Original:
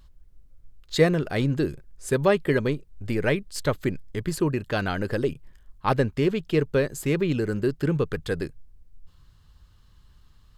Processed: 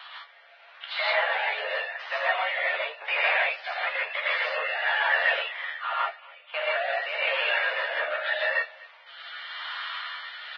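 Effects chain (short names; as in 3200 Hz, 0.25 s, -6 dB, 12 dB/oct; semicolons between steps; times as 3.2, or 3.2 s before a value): tilt +3 dB/oct; in parallel at -3 dB: limiter -17 dBFS, peak gain reduction 9.5 dB; on the sum: compressor 20:1, threshold -33 dBFS, peak gain reduction 20.5 dB; 5.97–6.54 flipped gate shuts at -41 dBFS, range -38 dB; overdrive pedal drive 33 dB, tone 2600 Hz, clips at -17 dBFS; rotary speaker horn 0.9 Hz; doubler 13 ms -6 dB; on a send: feedback echo 0.248 s, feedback 25%, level -22.5 dB; on the sum: non-linear reverb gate 0.18 s rising, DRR -6 dB; mistuned SSB +150 Hz 560–3200 Hz; Vorbis 16 kbps 16000 Hz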